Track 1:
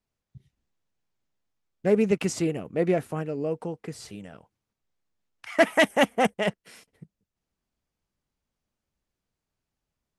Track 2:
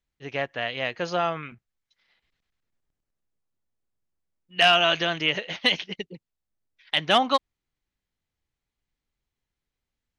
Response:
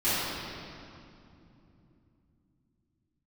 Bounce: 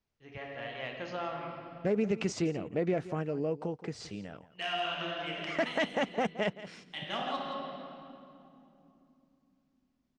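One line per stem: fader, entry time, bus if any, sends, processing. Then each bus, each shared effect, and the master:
−0.5 dB, 0.00 s, no send, echo send −17.5 dB, low-pass filter 6,400 Hz 24 dB per octave; brickwall limiter −15 dBFS, peak gain reduction 7.5 dB
−10.0 dB, 0.00 s, send −15.5 dB, echo send −11 dB, high-shelf EQ 5,200 Hz −9.5 dB; harmonic generator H 3 −23 dB, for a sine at −8 dBFS; automatic ducking −9 dB, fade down 0.55 s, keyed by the first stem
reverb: on, RT60 2.9 s, pre-delay 4 ms
echo: single-tap delay 170 ms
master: downward compressor 1.5 to 1, threshold −34 dBFS, peak gain reduction 5.5 dB

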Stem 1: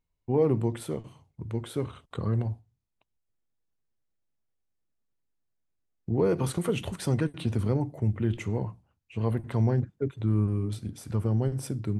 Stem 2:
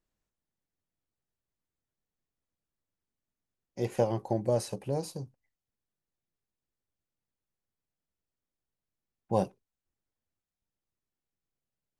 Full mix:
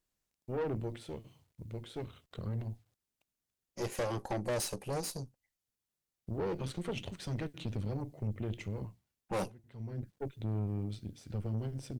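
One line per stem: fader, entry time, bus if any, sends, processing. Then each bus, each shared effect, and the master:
−4.0 dB, 0.20 s, no send, low-pass filter 4,600 Hz 12 dB per octave; parametric band 1,100 Hz −7 dB 0.94 octaves; bit reduction 12 bits; automatic ducking −19 dB, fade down 0.45 s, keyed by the second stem
+2.5 dB, 0.00 s, no send, no processing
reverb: not used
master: high-shelf EQ 2,800 Hz +8 dB; tube saturation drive 30 dB, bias 0.8

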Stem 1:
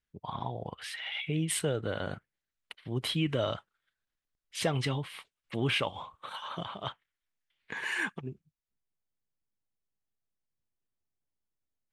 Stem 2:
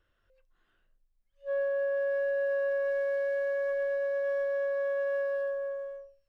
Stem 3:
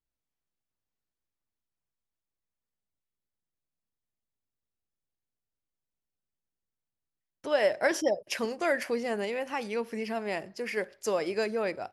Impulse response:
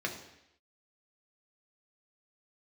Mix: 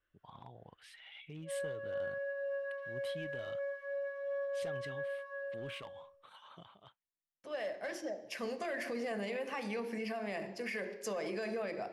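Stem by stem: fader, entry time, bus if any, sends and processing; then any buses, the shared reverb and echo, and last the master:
−16.5 dB, 0.00 s, no send, gain into a clipping stage and back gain 23.5 dB; automatic ducking −19 dB, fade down 0.85 s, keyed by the third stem
−11.5 dB, 0.00 s, send −8 dB, parametric band 1,700 Hz +4.5 dB 1.6 octaves; multi-voice chorus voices 2, 0.45 Hz, delay 23 ms, depth 1.8 ms
0:08.26 −16 dB → 0:08.55 −7 dB, 0.00 s, send −4 dB, soft clipping −19.5 dBFS, distortion −18 dB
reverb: on, RT60 0.80 s, pre-delay 3 ms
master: brickwall limiter −30.5 dBFS, peak gain reduction 11 dB

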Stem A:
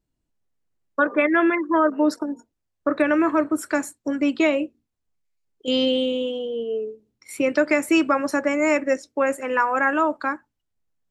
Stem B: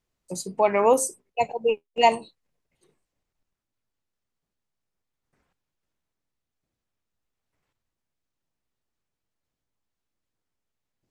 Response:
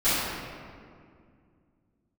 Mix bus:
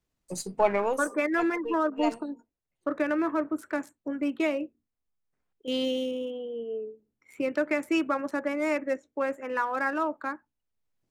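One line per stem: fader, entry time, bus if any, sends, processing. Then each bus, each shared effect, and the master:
−7.5 dB, 0.00 s, no send, adaptive Wiener filter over 9 samples; parametric band 110 Hz −7 dB 0.22 octaves
−1.0 dB, 0.00 s, no send, gain on one half-wave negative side −3 dB; automatic ducking −11 dB, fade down 0.25 s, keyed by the first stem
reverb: not used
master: no processing

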